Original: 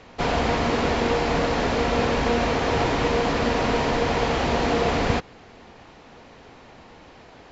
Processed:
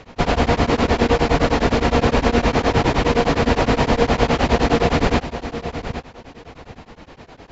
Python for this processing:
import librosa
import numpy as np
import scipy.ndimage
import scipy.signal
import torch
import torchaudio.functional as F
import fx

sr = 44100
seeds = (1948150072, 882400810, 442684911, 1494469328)

y = fx.low_shelf(x, sr, hz=250.0, db=5.0)
y = fx.echo_feedback(y, sr, ms=803, feedback_pct=18, wet_db=-11.0)
y = y * np.abs(np.cos(np.pi * 9.7 * np.arange(len(y)) / sr))
y = y * librosa.db_to_amplitude(6.0)